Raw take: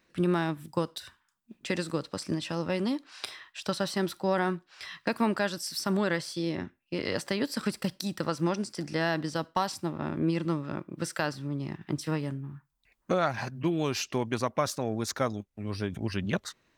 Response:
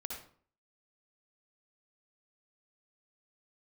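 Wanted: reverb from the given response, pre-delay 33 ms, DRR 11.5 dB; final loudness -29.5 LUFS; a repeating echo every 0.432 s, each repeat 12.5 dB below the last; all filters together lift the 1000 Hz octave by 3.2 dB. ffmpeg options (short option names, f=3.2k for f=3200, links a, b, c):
-filter_complex "[0:a]equalizer=f=1k:t=o:g=4,aecho=1:1:432|864|1296:0.237|0.0569|0.0137,asplit=2[a][b];[1:a]atrim=start_sample=2205,adelay=33[c];[b][c]afir=irnorm=-1:irlink=0,volume=-10.5dB[d];[a][d]amix=inputs=2:normalize=0,volume=0.5dB"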